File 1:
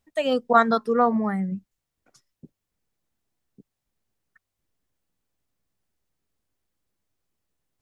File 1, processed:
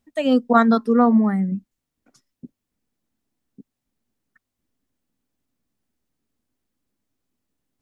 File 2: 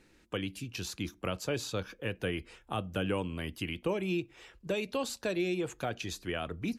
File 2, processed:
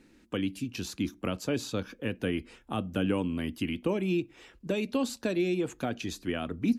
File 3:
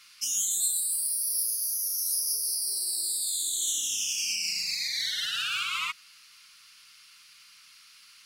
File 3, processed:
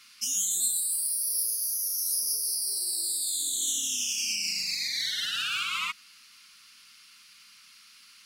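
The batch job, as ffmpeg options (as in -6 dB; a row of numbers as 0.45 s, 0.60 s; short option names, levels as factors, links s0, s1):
-af "equalizer=f=250:t=o:w=0.71:g=11"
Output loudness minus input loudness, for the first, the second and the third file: +4.0 LU, +3.5 LU, 0.0 LU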